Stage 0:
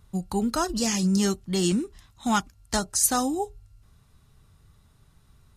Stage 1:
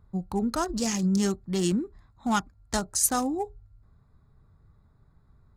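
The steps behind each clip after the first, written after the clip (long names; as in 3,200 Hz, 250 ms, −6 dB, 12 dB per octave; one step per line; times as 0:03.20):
adaptive Wiener filter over 15 samples
level −1.5 dB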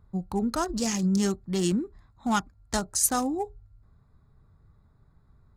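no processing that can be heard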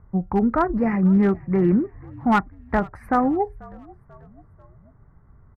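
elliptic low-pass filter 2,100 Hz, stop band 40 dB
gain into a clipping stage and back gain 19.5 dB
echo with shifted repeats 489 ms, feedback 52%, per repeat −52 Hz, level −23 dB
level +8.5 dB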